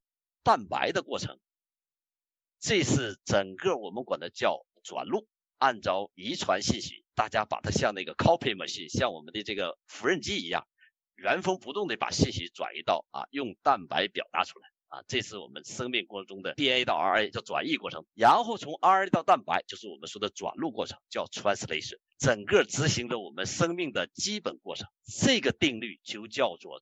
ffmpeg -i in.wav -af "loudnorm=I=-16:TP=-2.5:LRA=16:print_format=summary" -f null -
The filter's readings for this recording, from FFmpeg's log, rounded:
Input Integrated:    -29.2 LUFS
Input True Peak:      -8.9 dBTP
Input LRA:             4.3 LU
Input Threshold:     -39.6 LUFS